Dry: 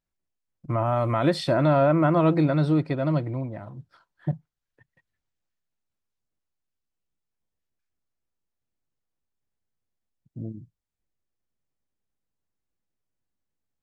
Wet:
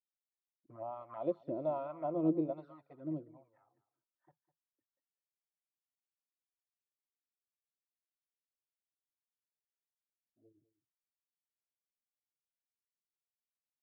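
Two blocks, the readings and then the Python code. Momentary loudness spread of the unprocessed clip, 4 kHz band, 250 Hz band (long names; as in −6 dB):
18 LU, below −35 dB, −14.0 dB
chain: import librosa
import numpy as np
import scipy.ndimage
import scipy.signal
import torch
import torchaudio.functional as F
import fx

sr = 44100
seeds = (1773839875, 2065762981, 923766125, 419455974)

y = fx.wah_lfo(x, sr, hz=1.2, low_hz=320.0, high_hz=1200.0, q=2.3)
y = fx.env_flanger(y, sr, rest_ms=3.4, full_db=-26.0)
y = y + 10.0 ** (-15.5 / 20.0) * np.pad(y, (int(203 * sr / 1000.0), 0))[:len(y)]
y = fx.upward_expand(y, sr, threshold_db=-49.0, expansion=1.5)
y = F.gain(torch.from_numpy(y), -5.0).numpy()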